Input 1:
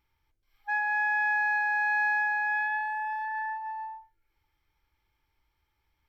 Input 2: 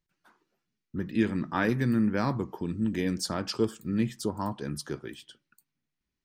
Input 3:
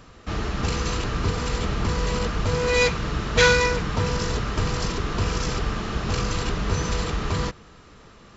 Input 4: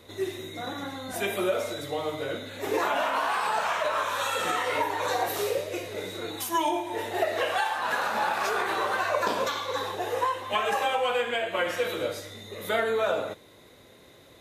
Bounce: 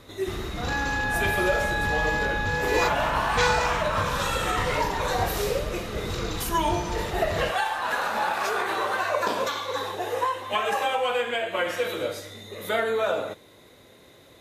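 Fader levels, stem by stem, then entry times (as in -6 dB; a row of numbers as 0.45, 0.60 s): -1.0 dB, off, -7.0 dB, +1.0 dB; 0.00 s, off, 0.00 s, 0.00 s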